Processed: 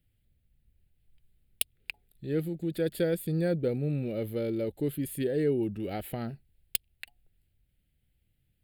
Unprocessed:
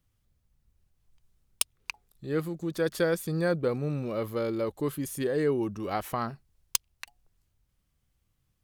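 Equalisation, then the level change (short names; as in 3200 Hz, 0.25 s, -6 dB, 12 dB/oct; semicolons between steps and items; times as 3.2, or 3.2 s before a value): dynamic EQ 1800 Hz, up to -5 dB, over -43 dBFS, Q 0.71; fixed phaser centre 2600 Hz, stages 4; +1.5 dB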